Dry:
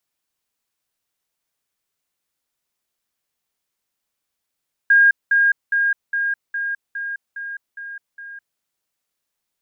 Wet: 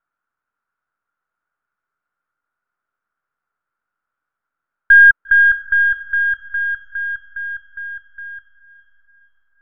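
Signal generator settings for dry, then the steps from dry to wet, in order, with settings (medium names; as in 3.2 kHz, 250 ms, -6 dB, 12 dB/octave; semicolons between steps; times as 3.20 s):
level ladder 1.62 kHz -9 dBFS, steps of -3 dB, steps 9, 0.21 s 0.20 s
partial rectifier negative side -7 dB; resonant low-pass 1.4 kHz, resonance Q 9.8; echo that smears into a reverb 474 ms, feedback 45%, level -14 dB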